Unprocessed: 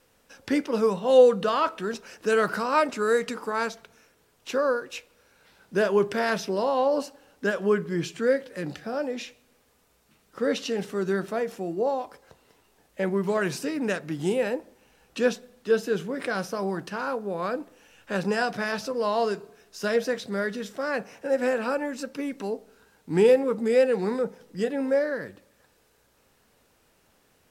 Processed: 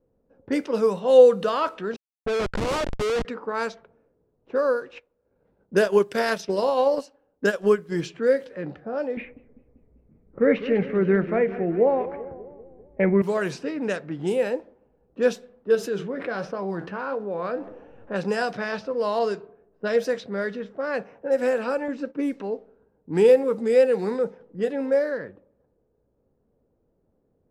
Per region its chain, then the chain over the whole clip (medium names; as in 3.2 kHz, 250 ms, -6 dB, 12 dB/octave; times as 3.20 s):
1.96–3.25 s: bass shelf 63 Hz -7 dB + Schmitt trigger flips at -25 dBFS
4.96–8.01 s: treble shelf 3.3 kHz +6.5 dB + transient shaper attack +5 dB, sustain -10 dB
9.17–13.22 s: resonant low-pass 2.2 kHz, resonance Q 6.1 + tilt EQ -3.5 dB/octave + modulated delay 196 ms, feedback 60%, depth 184 cents, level -14 dB
15.75–18.14 s: flange 1.4 Hz, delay 6.4 ms, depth 6.1 ms, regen +68% + level flattener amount 50%
19.19–19.98 s: level-controlled noise filter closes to 2 kHz, open at -21 dBFS + low-pass 8.6 kHz
21.88–22.34 s: gate -45 dBFS, range -10 dB + peaking EQ 310 Hz +8 dB 0.52 oct + tape noise reduction on one side only decoder only
whole clip: level-controlled noise filter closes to 400 Hz, open at -21 dBFS; peaking EQ 500 Hz +4 dB 0.63 oct; trim -1 dB